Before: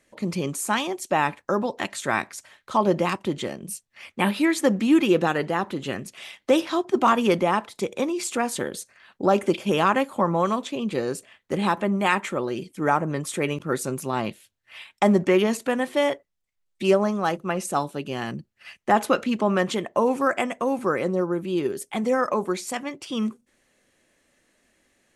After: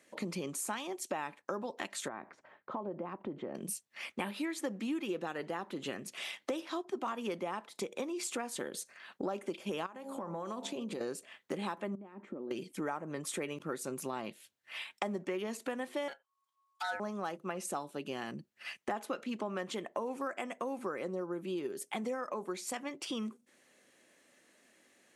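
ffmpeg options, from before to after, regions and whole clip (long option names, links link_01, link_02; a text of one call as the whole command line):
ffmpeg -i in.wav -filter_complex "[0:a]asettb=1/sr,asplit=3[link_01][link_02][link_03];[link_01]atrim=end=2.084[link_04];[link_02]atrim=start=2.08:end=3.55,asetpts=PTS-STARTPTS,afade=type=in:duration=0.004:curve=qsin,afade=type=out:start_time=1.466:duration=0.004:curve=qsin,acompressor=threshold=-35dB:ratio=2:attack=3.2:release=140:knee=1:detection=peak,lowpass=1100[link_05];[link_03]atrim=start=3.546[link_06];[link_04][link_05]acrossfade=duration=0.004:curve1=hsin:curve2=qsin[link_07];[link_07][link_06]acrossfade=duration=0.004:curve1=qsin:curve2=hsin,asettb=1/sr,asplit=3[link_08][link_09][link_10];[link_08]atrim=end=9.864[link_11];[link_09]atrim=start=9.86:end=11.01,asetpts=PTS-STARTPTS,afade=type=in:duration=0.004:curve=qsin,afade=type=out:start_time=1.146:duration=0.004:curve=qsin,equalizer=frequency=2300:width_type=o:width=1.4:gain=-5.5,bandreject=frequency=68.05:width_type=h:width=4,bandreject=frequency=136.1:width_type=h:width=4,bandreject=frequency=204.15:width_type=h:width=4,bandreject=frequency=272.2:width_type=h:width=4,bandreject=frequency=340.25:width_type=h:width=4,bandreject=frequency=408.3:width_type=h:width=4,bandreject=frequency=476.35:width_type=h:width=4,bandreject=frequency=544.4:width_type=h:width=4,bandreject=frequency=612.45:width_type=h:width=4,bandreject=frequency=680.5:width_type=h:width=4,bandreject=frequency=748.55:width_type=h:width=4,bandreject=frequency=816.6:width_type=h:width=4,bandreject=frequency=884.65:width_type=h:width=4,bandreject=frequency=952.7:width_type=h:width=4,acompressor=threshold=-31dB:ratio=8:attack=3.2:release=140:knee=1:detection=peak[link_12];[link_10]atrim=start=11.006[link_13];[link_11][link_12]acrossfade=duration=0.004:curve1=hsin:curve2=qsin[link_14];[link_14][link_13]acrossfade=duration=0.004:curve1=qsin:curve2=hsin,asettb=1/sr,asplit=3[link_15][link_16][link_17];[link_15]atrim=end=11.954[link_18];[link_16]atrim=start=11.95:end=12.51,asetpts=PTS-STARTPTS,afade=type=in:duration=0.004:curve=qsin,afade=type=out:start_time=0.556:duration=0.004:curve=qsin,acompressor=threshold=-30dB:ratio=16:attack=3.2:release=140:knee=1:detection=peak,bandpass=frequency=260:width_type=q:width=1.8[link_19];[link_17]atrim=start=12.506[link_20];[link_18][link_19]acrossfade=duration=0.004:curve1=hsin:curve2=qsin[link_21];[link_21][link_20]acrossfade=duration=0.004:curve1=qsin:curve2=hsin,asettb=1/sr,asplit=3[link_22][link_23][link_24];[link_22]atrim=end=16.084[link_25];[link_23]atrim=start=16.08:end=17,asetpts=PTS-STARTPTS,afade=type=in:duration=0.004:curve=qsin,afade=type=out:start_time=0.916:duration=0.004:curve=qsin,equalizer=frequency=640:width=1.2:gain=-5,aeval=exprs='val(0)*sin(2*PI*1100*n/s)':channel_layout=same[link_26];[link_24]atrim=start=16.996[link_27];[link_25][link_26]acrossfade=duration=0.004:curve1=hsin:curve2=qsin[link_28];[link_28][link_27]acrossfade=duration=0.004:curve1=qsin:curve2=hsin,highpass=200,acompressor=threshold=-36dB:ratio=5" out.wav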